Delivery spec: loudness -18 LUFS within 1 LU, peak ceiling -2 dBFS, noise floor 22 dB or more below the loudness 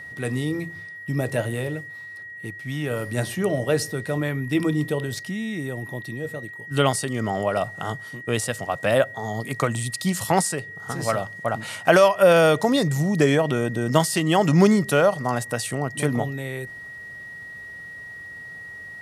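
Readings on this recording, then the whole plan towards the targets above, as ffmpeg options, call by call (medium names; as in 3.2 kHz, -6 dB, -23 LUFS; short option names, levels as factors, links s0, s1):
steady tone 1.9 kHz; tone level -36 dBFS; loudness -23.0 LUFS; peak level -2.5 dBFS; loudness target -18.0 LUFS
-> -af "bandreject=f=1900:w=30"
-af "volume=1.78,alimiter=limit=0.794:level=0:latency=1"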